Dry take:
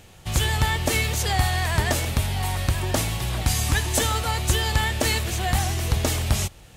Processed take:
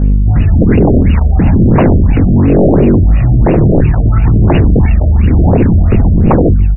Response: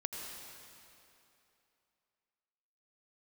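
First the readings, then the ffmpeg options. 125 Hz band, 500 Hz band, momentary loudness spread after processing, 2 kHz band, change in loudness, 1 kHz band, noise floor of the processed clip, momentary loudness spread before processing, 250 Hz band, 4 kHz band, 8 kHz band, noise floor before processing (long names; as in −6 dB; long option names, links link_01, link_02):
+16.5 dB, +17.0 dB, 2 LU, −1.0 dB, +14.5 dB, +6.5 dB, −9 dBFS, 3 LU, +23.0 dB, below −10 dB, below −40 dB, −47 dBFS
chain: -filter_complex "[0:a]acrossover=split=350[link_01][link_02];[link_02]acompressor=threshold=-34dB:ratio=6[link_03];[link_01][link_03]amix=inputs=2:normalize=0,equalizer=frequency=125:width_type=o:width=1:gain=4,equalizer=frequency=250:width_type=o:width=1:gain=-4,equalizer=frequency=500:width_type=o:width=1:gain=-7,equalizer=frequency=1000:width_type=o:width=1:gain=-8,equalizer=frequency=2000:width_type=o:width=1:gain=-8,equalizer=frequency=4000:width_type=o:width=1:gain=9,equalizer=frequency=8000:width_type=o:width=1:gain=8,aeval=exprs='val(0)+0.0251*(sin(2*PI*50*n/s)+sin(2*PI*2*50*n/s)/2+sin(2*PI*3*50*n/s)/3+sin(2*PI*4*50*n/s)/4+sin(2*PI*5*50*n/s)/5)':channel_layout=same,asplit=2[link_04][link_05];[link_05]adelay=75,lowpass=frequency=2000:poles=1,volume=-12dB,asplit=2[link_06][link_07];[link_07]adelay=75,lowpass=frequency=2000:poles=1,volume=0.49,asplit=2[link_08][link_09];[link_09]adelay=75,lowpass=frequency=2000:poles=1,volume=0.49,asplit=2[link_10][link_11];[link_11]adelay=75,lowpass=frequency=2000:poles=1,volume=0.49,asplit=2[link_12][link_13];[link_13]adelay=75,lowpass=frequency=2000:poles=1,volume=0.49[link_14];[link_04][link_06][link_08][link_10][link_12][link_14]amix=inputs=6:normalize=0,asplit=2[link_15][link_16];[1:a]atrim=start_sample=2205,asetrate=74970,aresample=44100[link_17];[link_16][link_17]afir=irnorm=-1:irlink=0,volume=-9.5dB[link_18];[link_15][link_18]amix=inputs=2:normalize=0,flanger=delay=19.5:depth=3.8:speed=0.49,dynaudnorm=framelen=350:gausssize=3:maxgain=4dB,aphaser=in_gain=1:out_gain=1:delay=1.6:decay=0.68:speed=1.1:type=sinusoidal,aeval=exprs='1.41*sin(PI/2*8.91*val(0)/1.41)':channel_layout=same,afftfilt=real='re*lt(b*sr/1024,690*pow(2900/690,0.5+0.5*sin(2*PI*2.9*pts/sr)))':imag='im*lt(b*sr/1024,690*pow(2900/690,0.5+0.5*sin(2*PI*2.9*pts/sr)))':win_size=1024:overlap=0.75,volume=-6dB"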